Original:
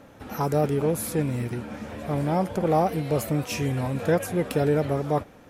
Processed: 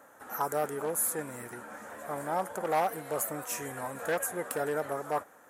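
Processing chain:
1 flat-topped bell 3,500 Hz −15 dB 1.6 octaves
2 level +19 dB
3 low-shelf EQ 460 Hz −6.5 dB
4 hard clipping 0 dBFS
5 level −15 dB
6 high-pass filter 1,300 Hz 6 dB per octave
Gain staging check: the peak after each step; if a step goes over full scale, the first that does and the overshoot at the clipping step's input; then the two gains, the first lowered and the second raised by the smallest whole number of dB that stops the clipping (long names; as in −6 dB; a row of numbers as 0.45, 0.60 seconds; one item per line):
−11.5, +7.5, +5.0, 0.0, −15.0, −14.0 dBFS
step 2, 5.0 dB
step 2 +14 dB, step 5 −10 dB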